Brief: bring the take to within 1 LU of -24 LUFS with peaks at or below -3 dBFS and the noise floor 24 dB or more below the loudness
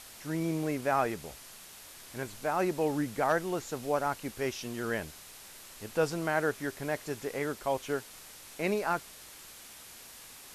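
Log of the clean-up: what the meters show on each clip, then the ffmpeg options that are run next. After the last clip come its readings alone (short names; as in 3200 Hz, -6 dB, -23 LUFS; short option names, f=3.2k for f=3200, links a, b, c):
noise floor -50 dBFS; noise floor target -57 dBFS; loudness -32.5 LUFS; peak -15.0 dBFS; loudness target -24.0 LUFS
-> -af "afftdn=nr=7:nf=-50"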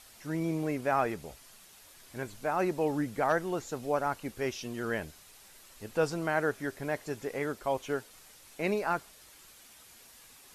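noise floor -56 dBFS; noise floor target -57 dBFS
-> -af "afftdn=nr=6:nf=-56"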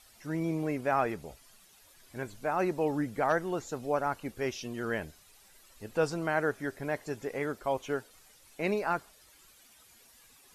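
noise floor -60 dBFS; loudness -33.0 LUFS; peak -15.0 dBFS; loudness target -24.0 LUFS
-> -af "volume=9dB"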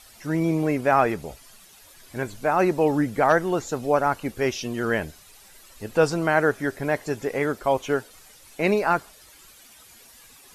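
loudness -24.0 LUFS; peak -6.0 dBFS; noise floor -51 dBFS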